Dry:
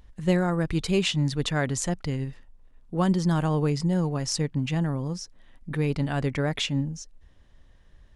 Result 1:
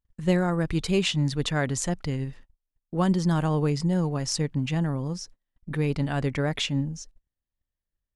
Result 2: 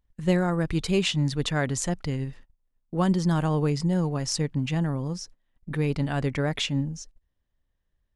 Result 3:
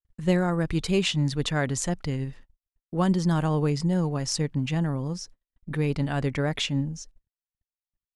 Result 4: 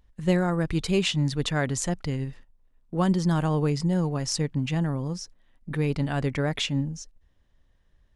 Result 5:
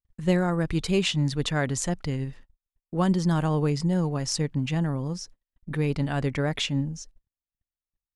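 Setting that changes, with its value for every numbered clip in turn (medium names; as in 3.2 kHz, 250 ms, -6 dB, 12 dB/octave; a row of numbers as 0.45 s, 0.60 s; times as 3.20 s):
gate, range: -33 dB, -21 dB, -60 dB, -9 dB, -46 dB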